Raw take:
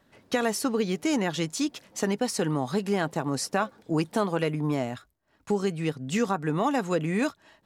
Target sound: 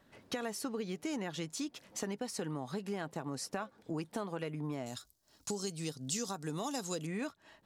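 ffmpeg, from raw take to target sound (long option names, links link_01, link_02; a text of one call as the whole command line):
ffmpeg -i in.wav -filter_complex "[0:a]asettb=1/sr,asplit=3[link_01][link_02][link_03];[link_01]atrim=end=4.864[link_04];[link_02]atrim=start=4.86:end=7.07,asetpts=PTS-STARTPTS,afade=type=in:duration=0.004:curve=qsin,afade=type=out:start_time=2.206:duration=0.004:curve=qsin,highshelf=frequency=3300:width_type=q:width=1.5:gain=14[link_05];[link_03]atrim=start=7.066[link_06];[link_04][link_05]acrossfade=duration=0.004:curve1=hsin:curve2=qsin[link_07];[link_07][link_06]acrossfade=duration=0.004:curve1=qsin:curve2=hsin,acompressor=threshold=-38dB:ratio=2.5,volume=-2dB" out.wav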